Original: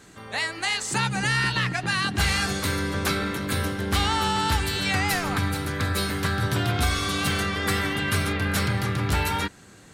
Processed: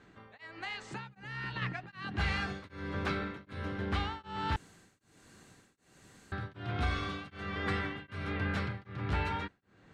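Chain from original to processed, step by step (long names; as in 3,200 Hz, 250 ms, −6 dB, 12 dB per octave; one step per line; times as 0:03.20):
low-pass filter 2,800 Hz 12 dB per octave
0:00.46–0:01.62: downward compressor 3 to 1, threshold −29 dBFS, peak gain reduction 6.5 dB
0:04.56–0:06.32: fill with room tone
tremolo along a rectified sine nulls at 1.3 Hz
level −7.5 dB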